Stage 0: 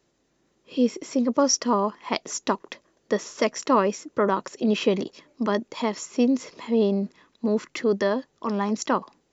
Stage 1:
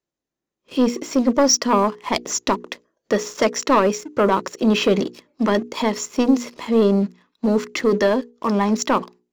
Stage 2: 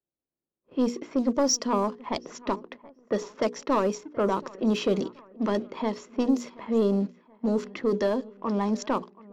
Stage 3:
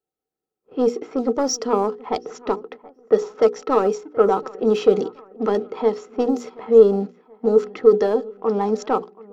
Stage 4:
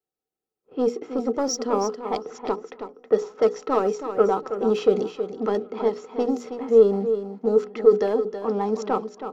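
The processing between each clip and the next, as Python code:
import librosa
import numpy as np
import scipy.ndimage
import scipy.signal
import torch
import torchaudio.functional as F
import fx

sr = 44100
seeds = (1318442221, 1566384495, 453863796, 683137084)

y1 = fx.leveller(x, sr, passes=2)
y1 = fx.noise_reduce_blind(y1, sr, reduce_db=14)
y1 = fx.hum_notches(y1, sr, base_hz=60, count=8)
y2 = fx.echo_feedback(y1, sr, ms=728, feedback_pct=46, wet_db=-22.5)
y2 = fx.env_lowpass(y2, sr, base_hz=880.0, full_db=-12.0)
y2 = fx.dynamic_eq(y2, sr, hz=2100.0, q=0.87, threshold_db=-35.0, ratio=4.0, max_db=-6)
y2 = y2 * 10.0 ** (-7.0 / 20.0)
y3 = fx.small_body(y2, sr, hz=(450.0, 760.0, 1300.0), ring_ms=65, db=17)
y4 = y3 + 10.0 ** (-9.5 / 20.0) * np.pad(y3, (int(322 * sr / 1000.0), 0))[:len(y3)]
y4 = y4 * 10.0 ** (-3.5 / 20.0)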